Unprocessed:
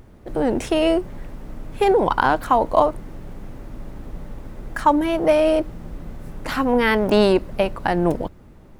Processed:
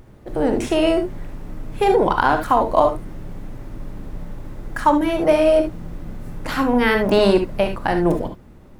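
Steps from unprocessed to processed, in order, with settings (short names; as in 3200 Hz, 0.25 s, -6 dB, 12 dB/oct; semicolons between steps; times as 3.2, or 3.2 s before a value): non-linear reverb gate 90 ms rising, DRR 5.5 dB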